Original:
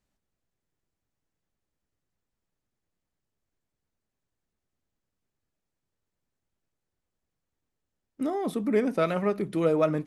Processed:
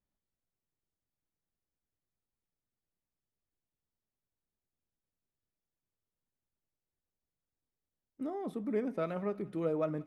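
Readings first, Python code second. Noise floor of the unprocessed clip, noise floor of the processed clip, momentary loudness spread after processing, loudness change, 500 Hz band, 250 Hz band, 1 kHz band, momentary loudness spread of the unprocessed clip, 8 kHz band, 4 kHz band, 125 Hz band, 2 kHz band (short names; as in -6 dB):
-85 dBFS, under -85 dBFS, 6 LU, -9.0 dB, -9.0 dB, -8.5 dB, -10.5 dB, 6 LU, under -15 dB, under -15 dB, -8.5 dB, -12.5 dB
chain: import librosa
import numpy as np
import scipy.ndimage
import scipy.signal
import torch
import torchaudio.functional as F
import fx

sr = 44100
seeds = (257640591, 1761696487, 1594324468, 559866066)

p1 = fx.high_shelf(x, sr, hz=2100.0, db=-9.5)
p2 = p1 + fx.echo_thinned(p1, sr, ms=178, feedback_pct=68, hz=790.0, wet_db=-22.0, dry=0)
y = p2 * 10.0 ** (-8.5 / 20.0)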